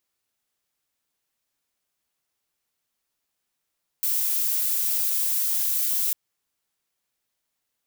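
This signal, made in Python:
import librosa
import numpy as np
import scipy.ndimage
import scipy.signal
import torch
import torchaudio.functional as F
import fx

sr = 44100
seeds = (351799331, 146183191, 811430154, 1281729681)

y = fx.noise_colour(sr, seeds[0], length_s=2.1, colour='violet', level_db=-24.0)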